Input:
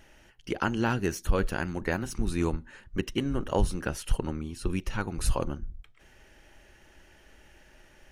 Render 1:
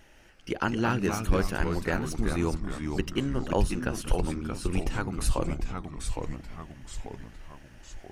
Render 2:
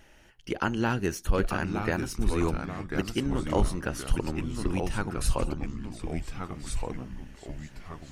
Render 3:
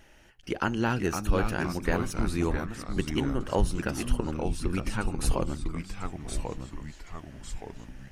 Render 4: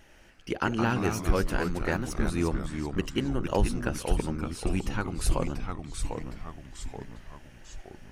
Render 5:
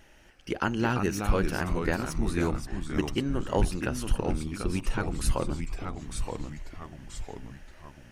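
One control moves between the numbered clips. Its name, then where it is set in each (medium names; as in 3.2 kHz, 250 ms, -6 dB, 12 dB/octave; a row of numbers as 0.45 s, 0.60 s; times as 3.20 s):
ever faster or slower copies, time: 154 ms, 814 ms, 434 ms, 92 ms, 266 ms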